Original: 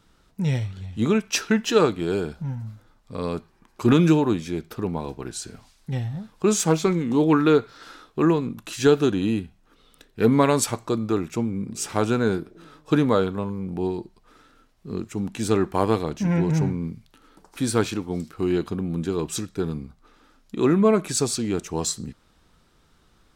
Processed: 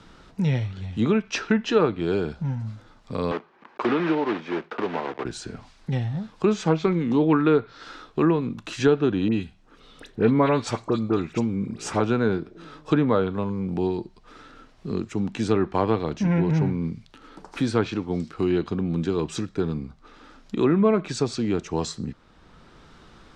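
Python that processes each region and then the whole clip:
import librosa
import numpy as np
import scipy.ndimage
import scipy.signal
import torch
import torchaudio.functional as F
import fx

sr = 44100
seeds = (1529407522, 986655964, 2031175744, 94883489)

y = fx.chain(x, sr, fx.block_float(bits=3),
    fx.bandpass_edges(low_hz=380.0, high_hz=2200.0),
    fx.band_squash(depth_pct=40), at=(3.31, 5.25))
y = fx.chain(y, sr, fx.high_shelf(hz=8500.0, db=6.5),
    fx.dispersion(late='highs', ms=55.0, hz=2200.0), at=(9.28, 12.0))
y = scipy.signal.sosfilt(scipy.signal.butter(2, 5900.0, 'lowpass', fs=sr, output='sos'), y)
y = fx.env_lowpass_down(y, sr, base_hz=2700.0, full_db=-15.5)
y = fx.band_squash(y, sr, depth_pct=40)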